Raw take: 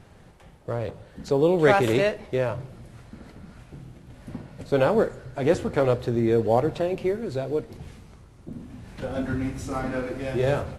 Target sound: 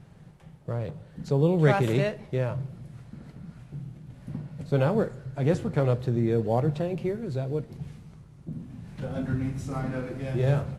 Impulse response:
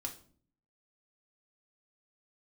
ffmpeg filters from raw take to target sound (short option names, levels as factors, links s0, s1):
-af "equalizer=f=150:t=o:w=0.76:g=14,volume=0.501"